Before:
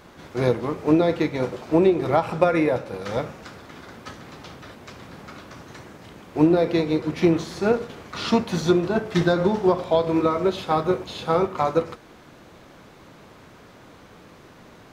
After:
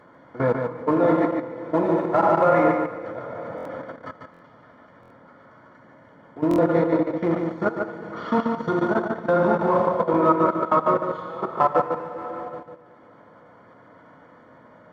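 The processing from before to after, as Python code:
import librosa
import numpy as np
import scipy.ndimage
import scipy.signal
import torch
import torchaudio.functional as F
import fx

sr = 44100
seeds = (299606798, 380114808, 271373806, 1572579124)

p1 = scipy.signal.savgol_filter(x, 41, 4, mode='constant')
p2 = fx.clip_asym(p1, sr, top_db=-18.5, bottom_db=-9.0)
p3 = p1 + F.gain(torch.from_numpy(p2), -3.0).numpy()
p4 = fx.chopper(p3, sr, hz=1.4, depth_pct=65, duty_pct=75)
p5 = fx.rev_plate(p4, sr, seeds[0], rt60_s=2.8, hf_ratio=0.95, predelay_ms=0, drr_db=-0.5)
p6 = fx.level_steps(p5, sr, step_db=16)
p7 = fx.highpass(p6, sr, hz=280.0, slope=6)
p8 = p7 + fx.echo_single(p7, sr, ms=146, db=-5.0, dry=0)
p9 = fx.dynamic_eq(p8, sr, hz=1200.0, q=1.9, threshold_db=-38.0, ratio=4.0, max_db=5)
p10 = fx.notch_comb(p9, sr, f0_hz=390.0)
y = fx.buffer_glitch(p10, sr, at_s=(3.56, 4.32, 5.01, 6.49), block=1024, repeats=3)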